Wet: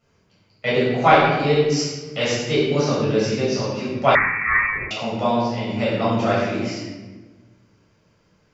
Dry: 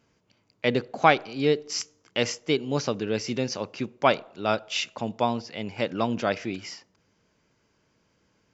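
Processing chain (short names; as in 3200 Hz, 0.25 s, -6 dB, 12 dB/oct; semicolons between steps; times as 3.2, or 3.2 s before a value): shoebox room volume 890 m³, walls mixed, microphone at 6.6 m; 4.15–4.91 inverted band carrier 2500 Hz; gain -6 dB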